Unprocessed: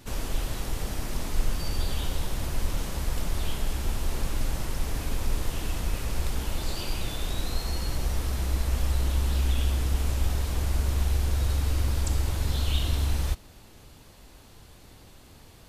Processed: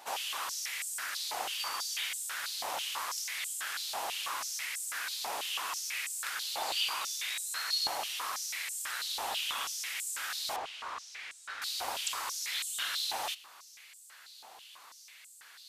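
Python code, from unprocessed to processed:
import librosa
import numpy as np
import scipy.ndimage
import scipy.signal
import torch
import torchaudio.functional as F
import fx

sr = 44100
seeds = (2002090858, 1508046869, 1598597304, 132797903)

y = fx.spacing_loss(x, sr, db_at_10k=20, at=(10.56, 11.62))
y = fx.filter_held_highpass(y, sr, hz=6.1, low_hz=780.0, high_hz=7900.0)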